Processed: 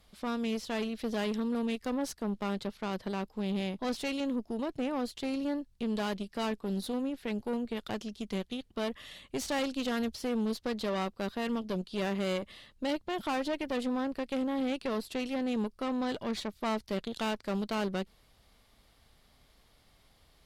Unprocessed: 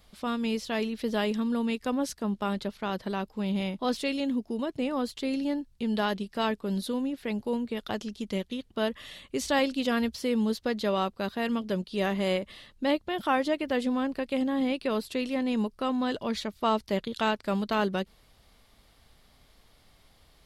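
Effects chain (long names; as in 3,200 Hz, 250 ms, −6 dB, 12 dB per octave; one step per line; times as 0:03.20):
tube saturation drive 27 dB, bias 0.65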